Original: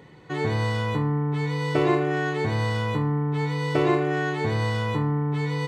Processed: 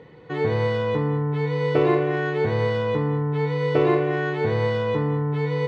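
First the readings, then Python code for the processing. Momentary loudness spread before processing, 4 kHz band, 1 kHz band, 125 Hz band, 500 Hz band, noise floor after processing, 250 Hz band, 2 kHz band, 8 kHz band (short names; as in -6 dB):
4 LU, -2.0 dB, 0.0 dB, +0.5 dB, +5.5 dB, -40 dBFS, +0.5 dB, 0.0 dB, n/a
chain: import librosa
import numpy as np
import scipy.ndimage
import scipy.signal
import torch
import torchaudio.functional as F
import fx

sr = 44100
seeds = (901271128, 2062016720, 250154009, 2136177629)

p1 = scipy.signal.sosfilt(scipy.signal.butter(2, 3800.0, 'lowpass', fs=sr, output='sos'), x)
p2 = fx.peak_eq(p1, sr, hz=480.0, db=11.5, octaves=0.23)
y = p2 + fx.echo_single(p2, sr, ms=206, db=-13.0, dry=0)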